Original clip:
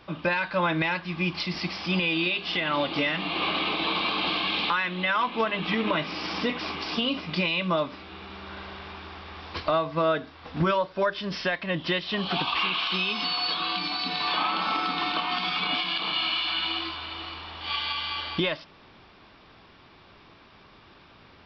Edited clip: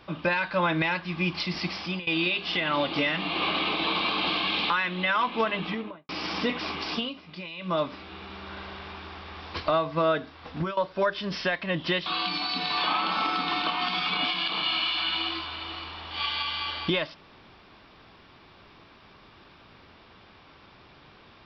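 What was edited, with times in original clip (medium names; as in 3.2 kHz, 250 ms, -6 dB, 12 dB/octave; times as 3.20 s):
1.78–2.07 s: fade out, to -20 dB
5.49–6.09 s: studio fade out
6.92–7.80 s: dip -13 dB, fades 0.22 s
10.47–10.77 s: fade out, to -16.5 dB
12.06–13.56 s: delete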